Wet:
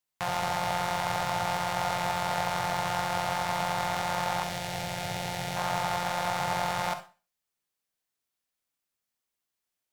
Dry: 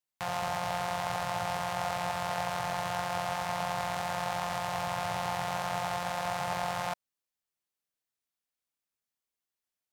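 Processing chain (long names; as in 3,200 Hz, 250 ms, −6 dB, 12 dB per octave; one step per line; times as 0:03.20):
stylus tracing distortion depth 0.039 ms
0:04.43–0:05.57: parametric band 1,100 Hz −14.5 dB 0.76 octaves
convolution reverb RT60 0.35 s, pre-delay 42 ms, DRR 9 dB
level +3.5 dB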